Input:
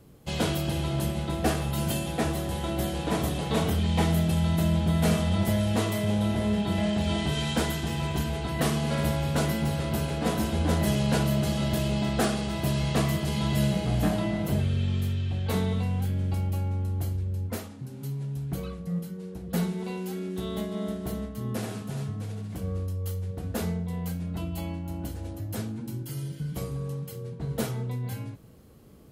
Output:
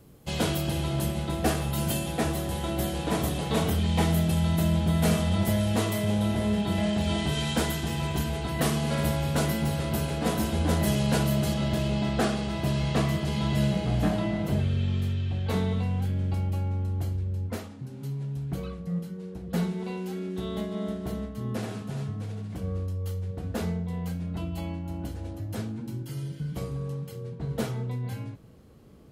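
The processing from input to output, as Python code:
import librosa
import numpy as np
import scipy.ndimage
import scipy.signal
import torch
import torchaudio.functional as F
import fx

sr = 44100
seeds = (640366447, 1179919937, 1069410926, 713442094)

y = fx.high_shelf(x, sr, hz=9000.0, db=fx.steps((0.0, 3.5), (11.53, -11.0)))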